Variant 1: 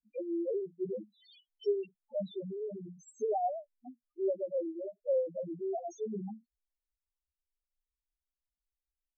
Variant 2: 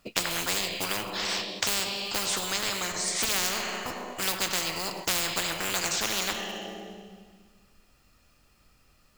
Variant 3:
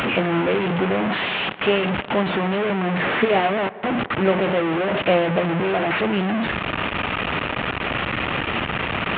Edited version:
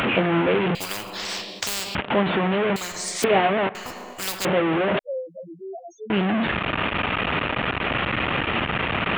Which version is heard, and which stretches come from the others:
3
0.75–1.95 s: from 2
2.76–3.24 s: from 2
3.75–4.45 s: from 2
4.99–6.10 s: from 1

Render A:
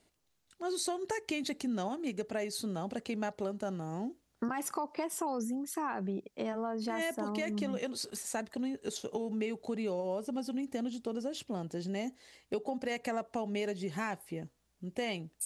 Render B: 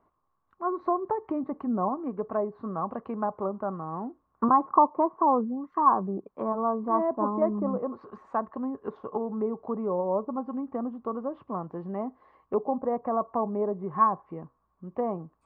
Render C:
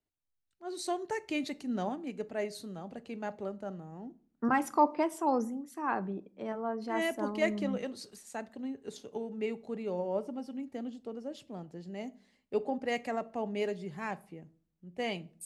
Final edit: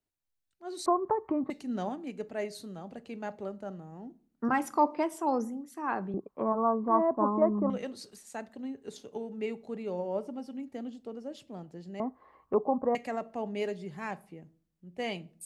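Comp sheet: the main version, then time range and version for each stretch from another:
C
0.86–1.50 s: from B
6.14–7.70 s: from B
12.00–12.95 s: from B
not used: A

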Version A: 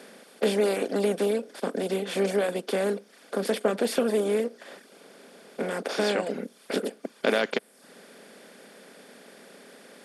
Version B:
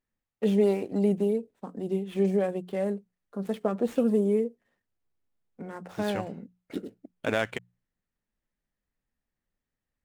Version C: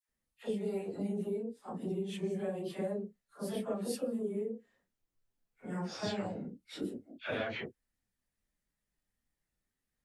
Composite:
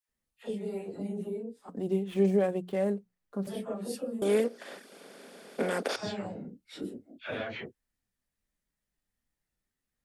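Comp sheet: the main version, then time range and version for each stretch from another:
C
1.69–3.47 s: from B
4.22–5.96 s: from A

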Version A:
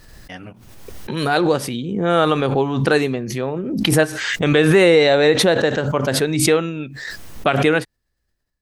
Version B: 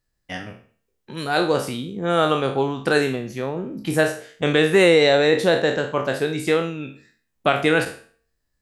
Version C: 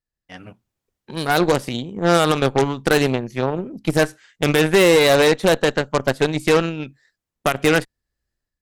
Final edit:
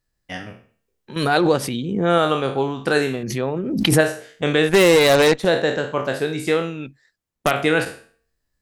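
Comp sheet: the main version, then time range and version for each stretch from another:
B
1.16–2.18 s: from A
3.23–4.01 s: from A
4.69–5.45 s: from C
6.86–7.51 s: from C

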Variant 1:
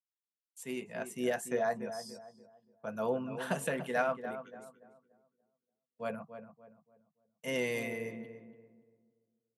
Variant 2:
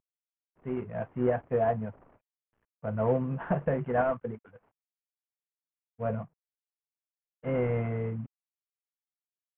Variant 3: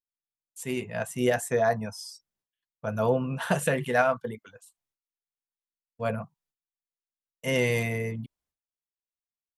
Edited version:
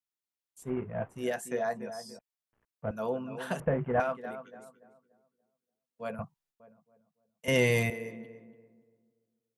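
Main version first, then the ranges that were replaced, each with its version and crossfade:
1
0.63–1.17 s: from 2, crossfade 0.16 s
2.19–2.91 s: from 2
3.60–4.00 s: from 2
6.19–6.60 s: from 3
7.48–7.90 s: from 3

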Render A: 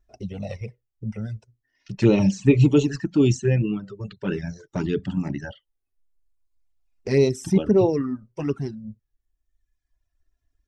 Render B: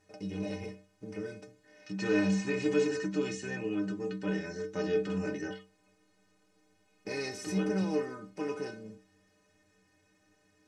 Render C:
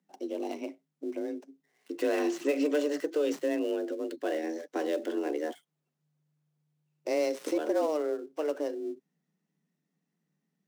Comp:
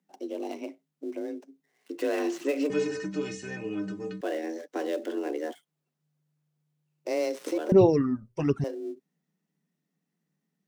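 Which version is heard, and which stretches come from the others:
C
2.70–4.21 s: from B
7.72–8.64 s: from A

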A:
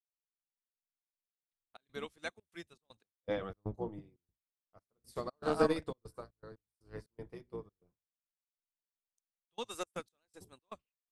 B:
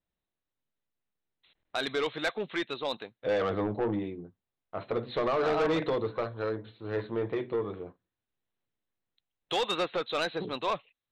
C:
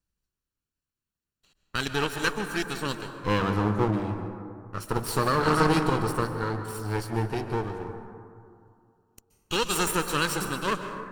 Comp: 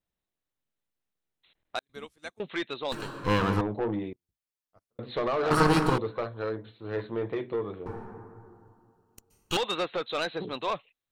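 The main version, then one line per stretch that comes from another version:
B
1.79–2.40 s: from A
2.92–3.61 s: from C
4.13–4.99 s: from A
5.51–5.98 s: from C
7.86–9.57 s: from C

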